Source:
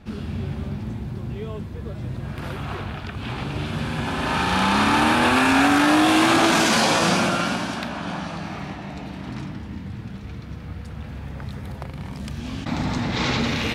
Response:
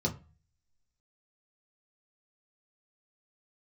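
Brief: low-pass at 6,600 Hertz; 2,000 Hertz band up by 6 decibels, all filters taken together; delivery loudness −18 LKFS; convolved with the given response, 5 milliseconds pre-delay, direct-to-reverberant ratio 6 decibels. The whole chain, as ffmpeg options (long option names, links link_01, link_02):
-filter_complex "[0:a]lowpass=6600,equalizer=frequency=2000:width_type=o:gain=8,asplit=2[link_01][link_02];[1:a]atrim=start_sample=2205,adelay=5[link_03];[link_02][link_03]afir=irnorm=-1:irlink=0,volume=-11.5dB[link_04];[link_01][link_04]amix=inputs=2:normalize=0,volume=-1dB"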